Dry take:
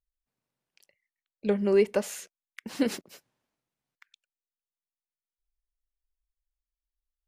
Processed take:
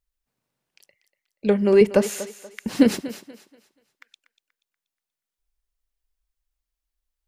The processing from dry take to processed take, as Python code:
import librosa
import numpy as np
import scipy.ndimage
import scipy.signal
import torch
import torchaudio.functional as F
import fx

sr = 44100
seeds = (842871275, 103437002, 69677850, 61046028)

y = fx.low_shelf(x, sr, hz=230.0, db=10.5, at=(1.81, 3.11))
y = fx.echo_thinned(y, sr, ms=240, feedback_pct=34, hz=260.0, wet_db=-14.0)
y = F.gain(torch.from_numpy(y), 6.5).numpy()